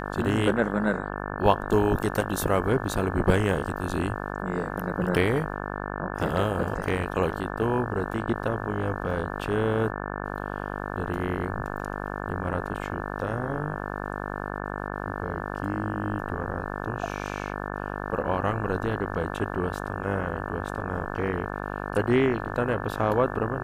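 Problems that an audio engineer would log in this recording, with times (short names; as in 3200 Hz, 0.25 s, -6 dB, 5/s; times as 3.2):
buzz 50 Hz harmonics 35 -33 dBFS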